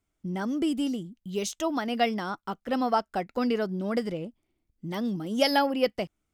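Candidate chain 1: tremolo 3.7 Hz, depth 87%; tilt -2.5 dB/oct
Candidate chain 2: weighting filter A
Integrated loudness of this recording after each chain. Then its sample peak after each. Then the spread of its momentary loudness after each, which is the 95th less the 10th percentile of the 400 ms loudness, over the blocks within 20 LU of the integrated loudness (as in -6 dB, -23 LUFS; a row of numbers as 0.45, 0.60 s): -29.5, -31.5 LUFS; -9.0, -10.0 dBFS; 11, 14 LU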